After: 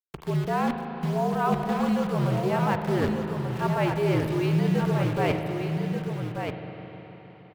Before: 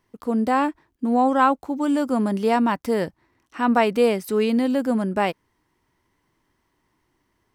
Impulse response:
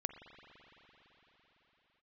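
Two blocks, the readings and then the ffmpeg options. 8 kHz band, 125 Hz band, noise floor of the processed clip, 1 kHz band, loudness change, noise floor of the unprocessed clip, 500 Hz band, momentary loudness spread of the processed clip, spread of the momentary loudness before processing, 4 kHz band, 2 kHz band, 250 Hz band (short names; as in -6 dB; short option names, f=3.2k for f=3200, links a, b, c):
-3.5 dB, +11.5 dB, -48 dBFS, -6.0 dB, -4.5 dB, -71 dBFS, -4.0 dB, 9 LU, 7 LU, -3.0 dB, -4.0 dB, -4.5 dB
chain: -filter_complex "[0:a]acrusher=bits=6:dc=4:mix=0:aa=0.000001,areverse,acompressor=threshold=-29dB:ratio=6,areverse,afreqshift=-71,acrossover=split=4100[a][b];[b]acompressor=threshold=-54dB:ratio=4:attack=1:release=60[c];[a][c]amix=inputs=2:normalize=0,aecho=1:1:1185:0.501[d];[1:a]atrim=start_sample=2205,asetrate=48510,aresample=44100[e];[d][e]afir=irnorm=-1:irlink=0,volume=8dB"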